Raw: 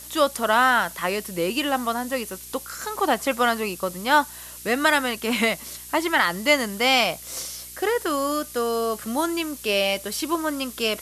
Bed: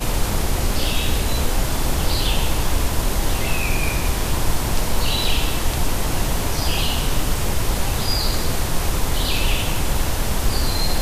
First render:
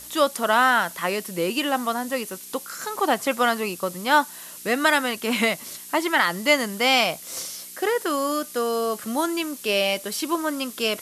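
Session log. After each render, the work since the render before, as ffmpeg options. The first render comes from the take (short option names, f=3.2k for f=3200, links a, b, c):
-af "bandreject=f=60:t=h:w=4,bandreject=f=120:t=h:w=4"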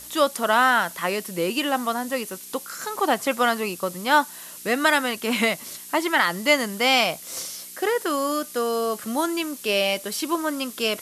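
-af anull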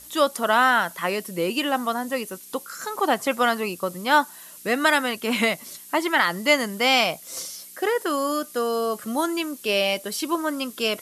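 -af "afftdn=nr=6:nf=-41"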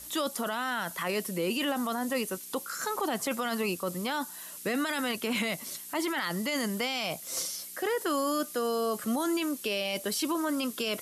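-filter_complex "[0:a]acrossover=split=310|3000[a][b][c];[b]acompressor=threshold=-27dB:ratio=2[d];[a][d][c]amix=inputs=3:normalize=0,alimiter=limit=-21.5dB:level=0:latency=1:release=10"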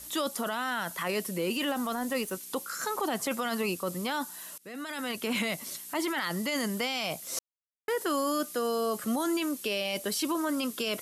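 -filter_complex "[0:a]asettb=1/sr,asplit=3[a][b][c];[a]atrim=end=1.374[d];[b]atrim=start=1.37:end=2.33,asetpts=PTS-STARTPTS,afade=t=in:d=0.004:c=qsin,afade=t=out:st=0.956:d=0.004:c=qsin,aeval=exprs='sgn(val(0))*max(abs(val(0))-0.00237,0)':c=same[e];[c]atrim=start=2.326[f];[d][e]acrossfade=d=0.004:c1=hsin:c2=qsin[g];[g][f]acrossfade=d=0.004:c1=qsin:c2=hsin,asplit=4[h][i][j][k];[h]atrim=end=4.58,asetpts=PTS-STARTPTS,afade=t=out:st=4.576:d=0.004:c=hsin:silence=0.0668344[l];[i]atrim=start=4.58:end=7.39,asetpts=PTS-STARTPTS,afade=t=in:d=0.72:silence=0.0668344,afade=t=out:st=2.806:d=0.004:c=hsin[m];[j]atrim=start=7.39:end=7.88,asetpts=PTS-STARTPTS,volume=0[n];[k]atrim=start=7.88,asetpts=PTS-STARTPTS,afade=t=in:d=0.004:c=hsin[o];[l][m][n][o]concat=n=4:v=0:a=1"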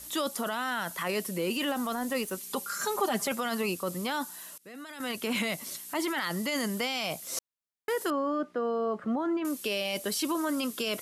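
-filter_complex "[0:a]asettb=1/sr,asplit=3[a][b][c];[a]atrim=end=2.374[d];[b]atrim=start=2.37:end=3.32,asetpts=PTS-STARTPTS,afade=t=in:d=0.004:c=qsin,afade=t=out:st=0.946:d=0.004:c=qsin,aecho=1:1:5:0.72,atrim=end_sample=41895[e];[c]atrim=start=3.316[f];[d][e]acrossfade=d=0.004:c1=hsin:c2=qsin[g];[g][f]acrossfade=d=0.004:c1=qsin:c2=hsin,asettb=1/sr,asplit=3[h][i][j];[h]atrim=end=8.104[k];[i]atrim=start=8.1:end=9.45,asetpts=PTS-STARTPTS,afade=t=in:d=0.004:c=qsin,afade=t=out:st=1.346:d=0.004:c=qsin,lowpass=1.5k[l];[j]atrim=start=9.446[m];[k][l]acrossfade=d=0.004:c1=hsin:c2=qsin[n];[n][m]acrossfade=d=0.004:c1=qsin:c2=hsin,asplit=2[o][p];[o]atrim=end=5,asetpts=PTS-STARTPTS,afade=t=out:st=4.28:d=0.72:silence=0.398107[q];[p]atrim=start=5,asetpts=PTS-STARTPTS,afade=t=in:d=0.004:c=hsin:silence=0.398107[r];[q][r]concat=n=2:v=0:a=1"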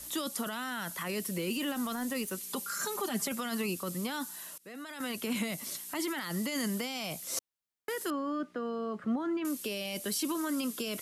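-filter_complex "[0:a]acrossover=split=350|1300|5900[a][b][c][d];[b]acompressor=threshold=-43dB:ratio=6[e];[c]alimiter=level_in=8.5dB:limit=-24dB:level=0:latency=1:release=66,volume=-8.5dB[f];[a][e][f][d]amix=inputs=4:normalize=0"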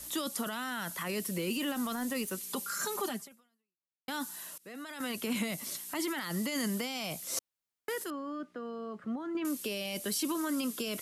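-filter_complex "[0:a]asplit=4[a][b][c][d];[a]atrim=end=4.08,asetpts=PTS-STARTPTS,afade=t=out:st=3.1:d=0.98:c=exp[e];[b]atrim=start=4.08:end=8.042,asetpts=PTS-STARTPTS,afade=t=in:d=0.004:c=hsin[f];[c]atrim=start=8.038:end=9.352,asetpts=PTS-STARTPTS,volume=-5dB[g];[d]atrim=start=9.348[h];[e][f]concat=n=2:v=0:a=1[i];[i][g]acrossfade=d=0.004:c1=hsin:c2=hsin[j];[j][h]acrossfade=d=0.004:c1=hsin:c2=hsin"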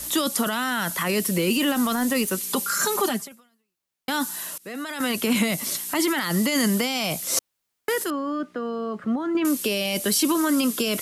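-af "volume=11.5dB"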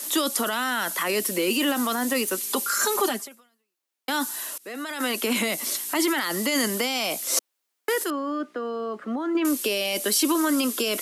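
-af "highpass=f=260:w=0.5412,highpass=f=260:w=1.3066"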